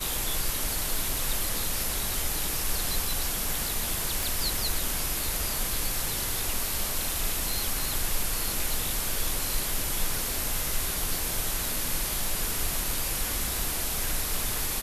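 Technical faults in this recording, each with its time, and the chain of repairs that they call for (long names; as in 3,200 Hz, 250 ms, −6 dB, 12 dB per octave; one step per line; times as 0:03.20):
0:04.23: click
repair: click removal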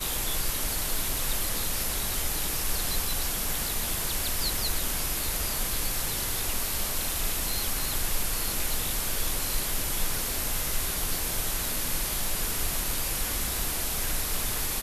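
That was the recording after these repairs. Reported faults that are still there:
none of them is left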